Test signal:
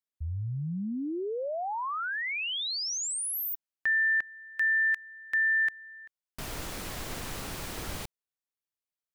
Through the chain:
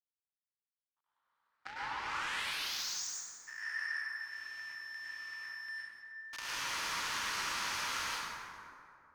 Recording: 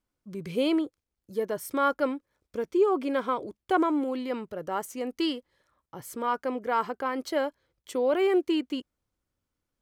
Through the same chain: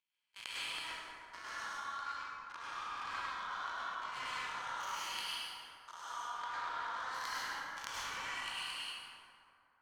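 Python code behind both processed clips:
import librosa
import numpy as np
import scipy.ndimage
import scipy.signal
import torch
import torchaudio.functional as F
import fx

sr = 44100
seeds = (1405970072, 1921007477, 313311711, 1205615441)

y = fx.spec_swells(x, sr, rise_s=1.34)
y = scipy.signal.sosfilt(scipy.signal.cheby1(5, 1.0, [930.0, 6600.0], 'bandpass', fs=sr, output='sos'), y)
y = fx.level_steps(y, sr, step_db=22)
y = fx.power_curve(y, sr, exponent=2.0)
y = fx.rev_plate(y, sr, seeds[0], rt60_s=2.6, hf_ratio=0.45, predelay_ms=90, drr_db=-9.0)
y = y * 10.0 ** (6.0 / 20.0)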